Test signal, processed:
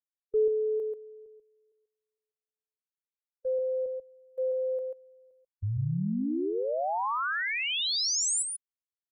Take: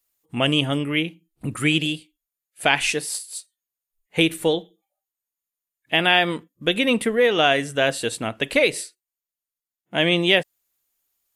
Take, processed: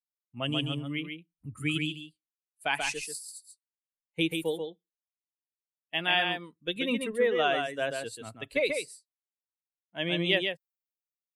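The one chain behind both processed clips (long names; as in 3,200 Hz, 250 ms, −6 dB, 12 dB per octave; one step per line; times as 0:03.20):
spectral dynamics exaggerated over time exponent 1.5
single-tap delay 138 ms −4.5 dB
multiband upward and downward expander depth 40%
level −8.5 dB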